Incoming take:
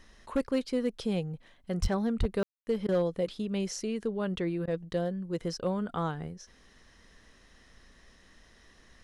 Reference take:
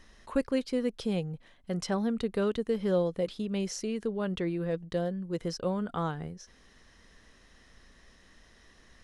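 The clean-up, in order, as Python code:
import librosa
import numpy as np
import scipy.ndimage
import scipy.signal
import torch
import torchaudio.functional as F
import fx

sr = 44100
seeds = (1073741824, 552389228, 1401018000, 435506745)

y = fx.fix_declip(x, sr, threshold_db=-21.0)
y = fx.fix_deplosive(y, sr, at_s=(1.81, 2.19))
y = fx.fix_ambience(y, sr, seeds[0], print_start_s=6.46, print_end_s=6.96, start_s=2.43, end_s=2.67)
y = fx.fix_interpolate(y, sr, at_s=(2.87, 4.66), length_ms=14.0)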